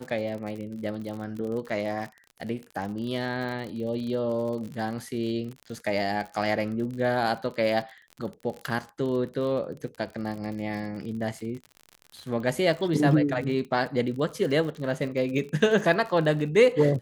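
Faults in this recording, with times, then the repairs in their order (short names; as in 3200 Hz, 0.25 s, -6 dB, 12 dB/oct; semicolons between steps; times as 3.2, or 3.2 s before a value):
crackle 50/s -34 dBFS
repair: de-click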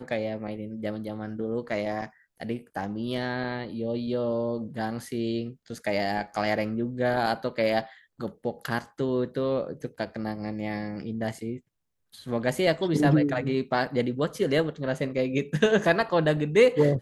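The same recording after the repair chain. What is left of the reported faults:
none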